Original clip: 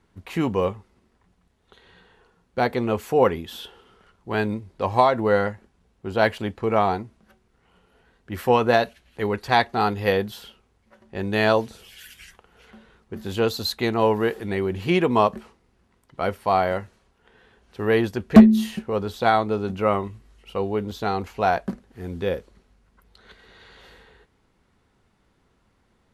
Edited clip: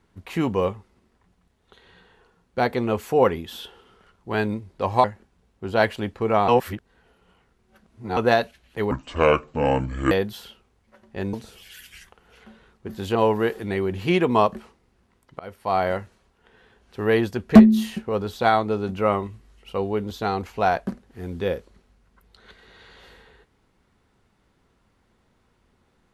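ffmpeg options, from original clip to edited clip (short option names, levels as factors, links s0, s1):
-filter_complex "[0:a]asplit=9[s0][s1][s2][s3][s4][s5][s6][s7][s8];[s0]atrim=end=5.042[s9];[s1]atrim=start=5.458:end=6.902[s10];[s2]atrim=start=6.898:end=8.592,asetpts=PTS-STARTPTS,areverse[s11];[s3]atrim=start=8.588:end=9.334[s12];[s4]atrim=start=9.33:end=10.1,asetpts=PTS-STARTPTS,asetrate=28224,aresample=44100[s13];[s5]atrim=start=10.096:end=11.322[s14];[s6]atrim=start=11.598:end=13.422[s15];[s7]atrim=start=13.958:end=16.2,asetpts=PTS-STARTPTS,afade=t=out:st=2.238:d=0.004:c=hsin:silence=0.0668344[s16];[s8]atrim=start=16.2,asetpts=PTS-STARTPTS,afade=t=in:d=0.47:silence=0.0668344[s17];[s9][s10]acrossfade=d=0.004:c1=hsin:c2=hsin[s18];[s18][s11]acrossfade=d=0.004:c1=hsin:c2=hsin[s19];[s19][s12]acrossfade=d=0.004:c1=hsin:c2=hsin[s20];[s20][s13]acrossfade=d=0.004:c1=hsin:c2=hsin[s21];[s21][s14]acrossfade=d=0.004:c1=hsin:c2=hsin[s22];[s22][s15]acrossfade=d=0.004:c1=hsin:c2=hsin[s23];[s16][s17]concat=n=2:v=0:a=1[s24];[s23][s24]acrossfade=d=0.004:c1=hsin:c2=hsin"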